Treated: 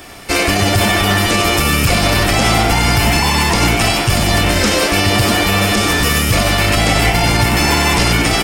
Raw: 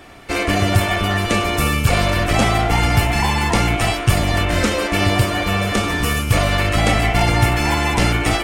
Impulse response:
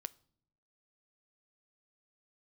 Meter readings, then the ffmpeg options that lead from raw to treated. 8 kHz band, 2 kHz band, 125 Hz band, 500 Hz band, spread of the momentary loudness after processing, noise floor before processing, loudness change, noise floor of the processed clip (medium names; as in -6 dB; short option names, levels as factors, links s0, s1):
+8.5 dB, +5.0 dB, +2.0 dB, +3.5 dB, 1 LU, -23 dBFS, +4.5 dB, -16 dBFS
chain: -filter_complex "[0:a]acrossover=split=6100[s0][s1];[s1]acompressor=threshold=0.0178:ratio=4:attack=1:release=60[s2];[s0][s2]amix=inputs=2:normalize=0,equalizer=f=5100:w=7.4:g=6.5,crystalizer=i=2:c=0,asplit=6[s3][s4][s5][s6][s7][s8];[s4]adelay=93,afreqshift=110,volume=0.355[s9];[s5]adelay=186,afreqshift=220,volume=0.166[s10];[s6]adelay=279,afreqshift=330,volume=0.0785[s11];[s7]adelay=372,afreqshift=440,volume=0.0367[s12];[s8]adelay=465,afreqshift=550,volume=0.0174[s13];[s3][s9][s10][s11][s12][s13]amix=inputs=6:normalize=0,alimiter=level_in=2.24:limit=0.891:release=50:level=0:latency=1,volume=0.75"